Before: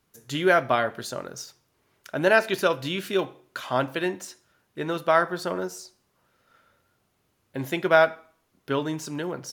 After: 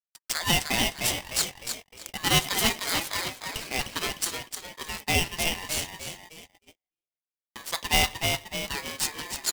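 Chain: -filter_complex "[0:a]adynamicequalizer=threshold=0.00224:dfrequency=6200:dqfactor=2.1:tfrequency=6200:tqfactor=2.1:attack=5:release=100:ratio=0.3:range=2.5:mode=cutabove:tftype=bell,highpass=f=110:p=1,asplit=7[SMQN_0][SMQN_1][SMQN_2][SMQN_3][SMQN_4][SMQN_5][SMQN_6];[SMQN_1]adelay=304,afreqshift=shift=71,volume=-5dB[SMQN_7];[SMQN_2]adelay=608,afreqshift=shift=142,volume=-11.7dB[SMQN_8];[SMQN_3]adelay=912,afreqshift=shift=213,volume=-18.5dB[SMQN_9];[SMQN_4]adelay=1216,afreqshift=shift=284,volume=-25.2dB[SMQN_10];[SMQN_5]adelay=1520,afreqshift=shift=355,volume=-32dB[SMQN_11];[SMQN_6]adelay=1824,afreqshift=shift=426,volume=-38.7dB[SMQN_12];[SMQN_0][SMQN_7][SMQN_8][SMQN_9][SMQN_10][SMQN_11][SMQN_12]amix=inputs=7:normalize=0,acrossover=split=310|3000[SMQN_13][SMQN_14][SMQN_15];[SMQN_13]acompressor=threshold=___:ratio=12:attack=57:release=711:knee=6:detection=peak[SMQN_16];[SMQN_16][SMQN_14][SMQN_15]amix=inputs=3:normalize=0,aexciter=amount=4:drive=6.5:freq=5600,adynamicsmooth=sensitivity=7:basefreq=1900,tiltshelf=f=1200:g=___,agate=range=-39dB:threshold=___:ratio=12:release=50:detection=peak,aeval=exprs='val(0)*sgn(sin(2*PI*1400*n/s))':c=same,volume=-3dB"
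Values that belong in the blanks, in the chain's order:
-46dB, -9, -51dB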